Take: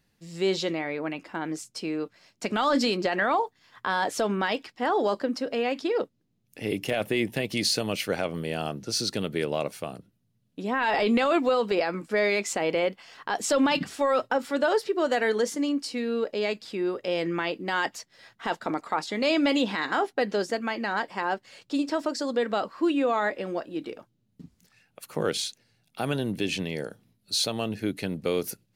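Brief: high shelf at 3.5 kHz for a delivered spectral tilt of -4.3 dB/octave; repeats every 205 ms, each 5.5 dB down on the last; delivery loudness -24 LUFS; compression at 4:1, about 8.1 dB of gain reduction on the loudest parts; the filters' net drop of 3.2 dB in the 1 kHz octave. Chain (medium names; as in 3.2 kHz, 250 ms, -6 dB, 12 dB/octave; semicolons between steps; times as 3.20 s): peaking EQ 1 kHz -4 dB; treble shelf 3.5 kHz -4 dB; compression 4:1, threshold -30 dBFS; feedback delay 205 ms, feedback 53%, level -5.5 dB; trim +9 dB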